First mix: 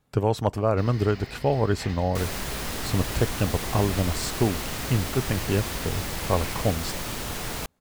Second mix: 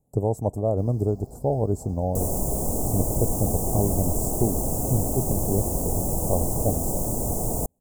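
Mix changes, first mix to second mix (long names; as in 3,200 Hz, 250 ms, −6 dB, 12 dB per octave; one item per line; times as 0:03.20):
second sound +8.0 dB
master: add elliptic band-stop filter 730–7,500 Hz, stop band 70 dB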